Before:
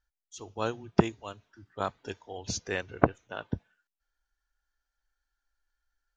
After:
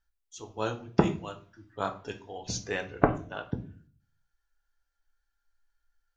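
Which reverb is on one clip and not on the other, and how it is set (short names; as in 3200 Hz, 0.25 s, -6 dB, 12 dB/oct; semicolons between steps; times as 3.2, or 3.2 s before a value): shoebox room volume 32 m³, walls mixed, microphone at 0.31 m; gain -1 dB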